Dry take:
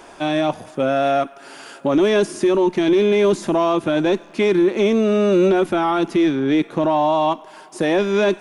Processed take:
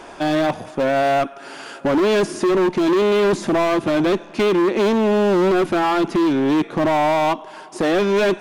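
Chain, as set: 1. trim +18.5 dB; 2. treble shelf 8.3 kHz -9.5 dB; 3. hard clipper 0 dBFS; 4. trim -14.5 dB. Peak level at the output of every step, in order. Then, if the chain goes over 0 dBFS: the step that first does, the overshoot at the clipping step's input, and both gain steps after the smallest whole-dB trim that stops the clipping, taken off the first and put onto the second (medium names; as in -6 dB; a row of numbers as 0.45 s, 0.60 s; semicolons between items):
+9.5 dBFS, +9.5 dBFS, 0.0 dBFS, -14.5 dBFS; step 1, 9.5 dB; step 1 +8.5 dB, step 4 -4.5 dB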